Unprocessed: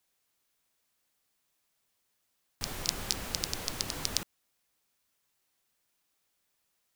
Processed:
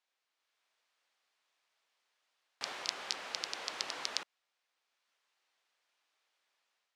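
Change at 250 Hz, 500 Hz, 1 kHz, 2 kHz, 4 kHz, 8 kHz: −14.0, −4.5, −0.5, 0.0, −3.5, −9.0 decibels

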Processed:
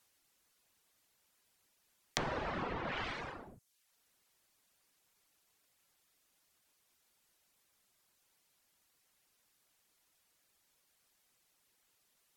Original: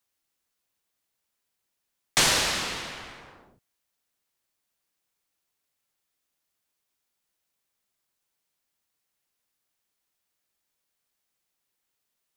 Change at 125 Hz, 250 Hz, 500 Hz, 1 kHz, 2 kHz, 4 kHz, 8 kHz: −5.5, −5.0, −5.5, −7.0, −12.5, −19.5, −24.0 decibels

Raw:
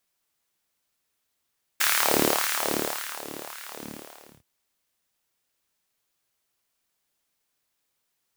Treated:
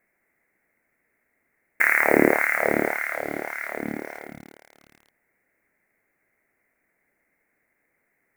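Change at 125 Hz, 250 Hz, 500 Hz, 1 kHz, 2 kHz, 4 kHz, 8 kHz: +4.5, +7.5, +7.0, +3.0, +9.5, −19.0, −12.5 decibels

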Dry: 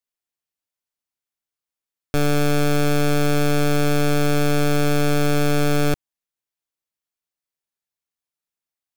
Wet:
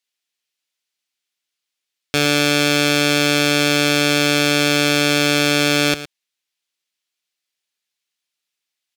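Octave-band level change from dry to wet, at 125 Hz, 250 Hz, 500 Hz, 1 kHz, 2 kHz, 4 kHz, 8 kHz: −4.0, +2.5, +2.0, +2.5, +10.0, +13.5, +9.0 decibels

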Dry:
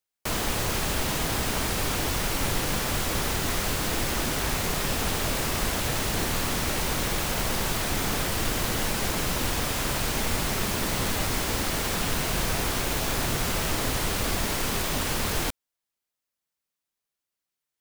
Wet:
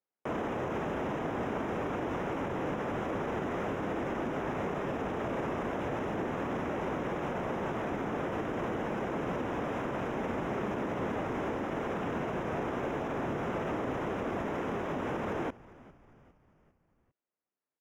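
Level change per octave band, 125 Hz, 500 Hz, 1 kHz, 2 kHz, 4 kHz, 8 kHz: −9.0, −0.5, −4.0, −9.5, −22.0, −30.0 decibels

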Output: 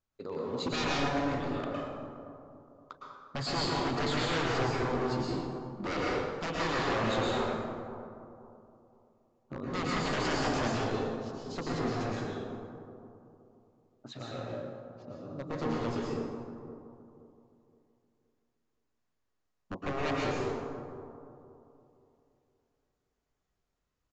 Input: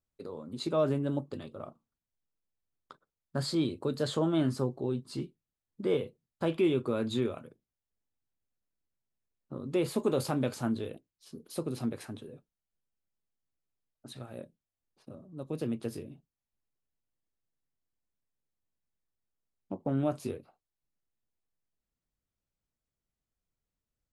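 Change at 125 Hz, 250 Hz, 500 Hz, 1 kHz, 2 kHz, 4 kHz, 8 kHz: −0.5, −1.5, −0.5, +9.5, +12.0, +6.0, +2.5 decibels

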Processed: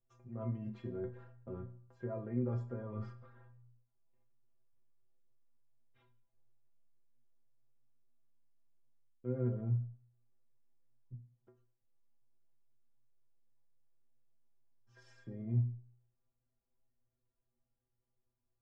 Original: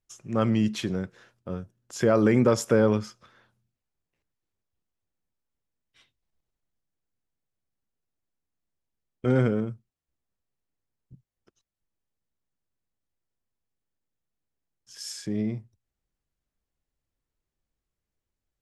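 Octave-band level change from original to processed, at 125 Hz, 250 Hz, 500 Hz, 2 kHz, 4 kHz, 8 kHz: −7.5 dB, −16.5 dB, −18.5 dB, below −25 dB, below −30 dB, below −35 dB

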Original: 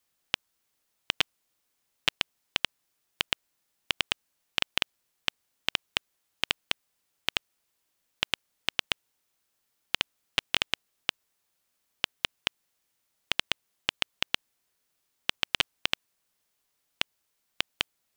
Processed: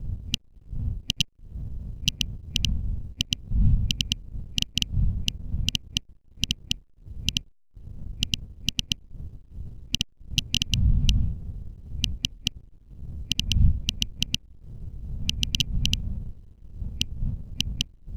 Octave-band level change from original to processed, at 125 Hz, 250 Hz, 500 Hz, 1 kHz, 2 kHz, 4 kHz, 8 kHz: +25.0 dB, +14.5 dB, −10.5 dB, below −20 dB, −4.0 dB, +3.5 dB, +11.0 dB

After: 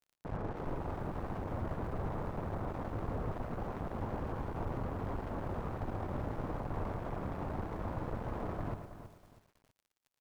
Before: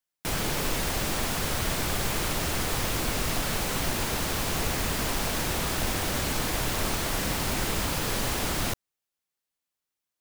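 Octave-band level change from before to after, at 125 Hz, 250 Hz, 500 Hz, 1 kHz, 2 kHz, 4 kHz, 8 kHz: −6.0 dB, −7.5 dB, −7.5 dB, −9.0 dB, −19.5 dB, −32.5 dB, below −35 dB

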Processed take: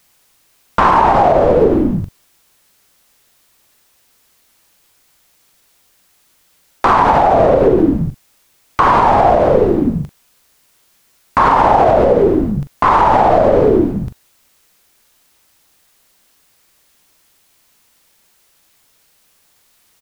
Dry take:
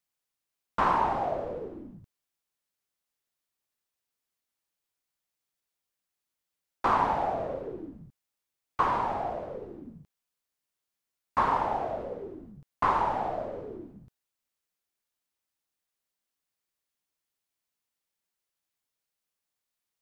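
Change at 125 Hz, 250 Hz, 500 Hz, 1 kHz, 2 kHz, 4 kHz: +23.5, +24.5, +22.5, +16.5, +16.0, +16.5 decibels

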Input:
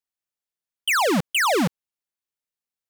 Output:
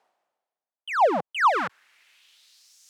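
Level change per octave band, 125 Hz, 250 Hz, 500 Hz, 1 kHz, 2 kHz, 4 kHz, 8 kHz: −16.5 dB, −11.5 dB, −1.0 dB, +3.0 dB, −5.0 dB, −12.5 dB, below −15 dB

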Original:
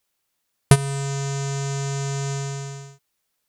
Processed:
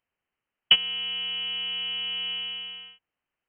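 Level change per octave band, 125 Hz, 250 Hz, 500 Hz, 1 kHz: below −35 dB, −24.5 dB, −23.5 dB, −14.5 dB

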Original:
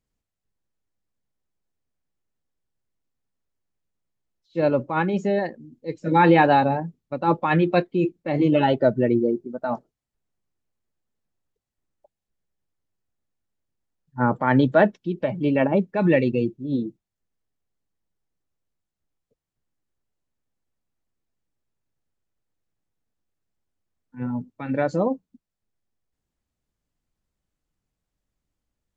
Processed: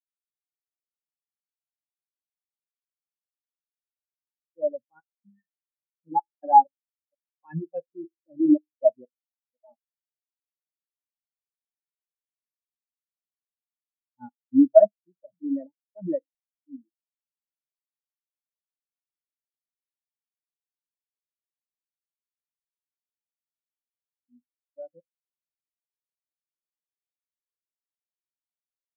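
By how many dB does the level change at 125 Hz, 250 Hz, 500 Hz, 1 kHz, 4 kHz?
−19.5 dB, −5.0 dB, −4.0 dB, −2.0 dB, below −40 dB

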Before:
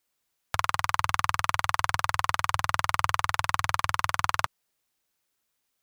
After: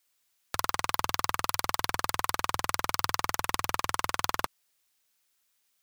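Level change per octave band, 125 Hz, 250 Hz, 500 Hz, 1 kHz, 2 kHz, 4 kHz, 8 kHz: −8.5, +4.0, +2.0, −4.5, −5.0, 0.0, +2.5 decibels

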